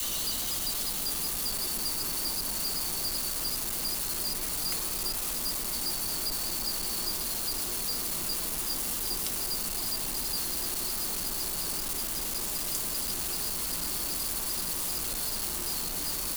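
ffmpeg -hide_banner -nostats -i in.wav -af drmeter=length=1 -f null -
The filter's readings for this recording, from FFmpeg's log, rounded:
Channel 1: DR: 12.5
Overall DR: 12.5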